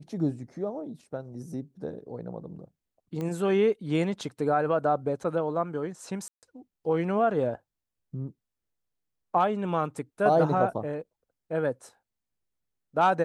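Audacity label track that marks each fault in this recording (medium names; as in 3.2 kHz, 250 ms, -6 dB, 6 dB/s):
3.210000	3.210000	pop -22 dBFS
6.280000	6.430000	dropout 148 ms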